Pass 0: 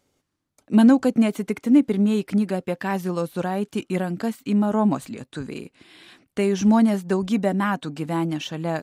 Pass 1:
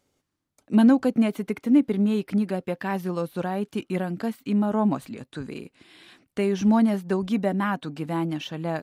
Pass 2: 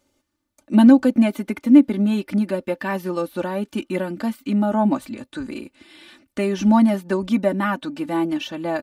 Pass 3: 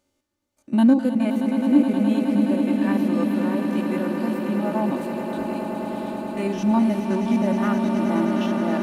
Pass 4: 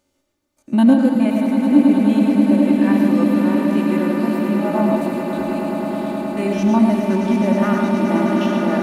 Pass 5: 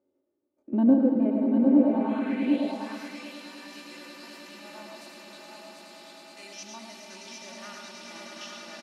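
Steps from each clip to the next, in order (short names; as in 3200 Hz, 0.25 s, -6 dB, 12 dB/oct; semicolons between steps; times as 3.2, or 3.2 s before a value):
dynamic EQ 7400 Hz, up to -7 dB, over -55 dBFS, Q 1.4; gain -2.5 dB
comb 3.4 ms, depth 75%; gain +2.5 dB
stepped spectrum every 50 ms; swelling echo 0.105 s, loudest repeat 8, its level -9.5 dB; gain -4 dB
reverb RT60 0.65 s, pre-delay 65 ms, DRR 2.5 dB; gain +3.5 dB
band-pass sweep 390 Hz -> 5300 Hz, 1.71–2.77; echo 0.752 s -4.5 dB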